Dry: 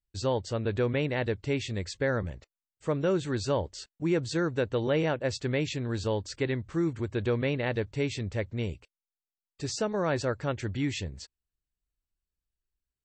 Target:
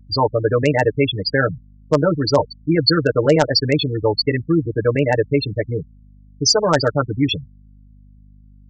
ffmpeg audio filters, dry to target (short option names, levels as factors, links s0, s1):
-filter_complex "[0:a]afftfilt=real='re*gte(hypot(re,im),0.0501)':imag='im*gte(hypot(re,im),0.0501)':win_size=1024:overlap=0.75,highshelf=f=2100:g=4,aecho=1:1:6.7:0.9,adynamicequalizer=threshold=0.00891:dfrequency=1000:dqfactor=0.9:tfrequency=1000:tqfactor=0.9:attack=5:release=100:ratio=0.375:range=3:mode=boostabove:tftype=bell,acrossover=split=160[s0][s1];[s0]acompressor=threshold=0.0224:ratio=10[s2];[s2][s1]amix=inputs=2:normalize=0,aeval=exprs='val(0)+0.00224*(sin(2*PI*50*n/s)+sin(2*PI*2*50*n/s)/2+sin(2*PI*3*50*n/s)/3+sin(2*PI*4*50*n/s)/4+sin(2*PI*5*50*n/s)/5)':c=same,aresample=16000,volume=3.98,asoftclip=hard,volume=0.251,aresample=44100,atempo=1.5,aexciter=amount=8.8:drive=2.6:freq=3600,volume=2.51"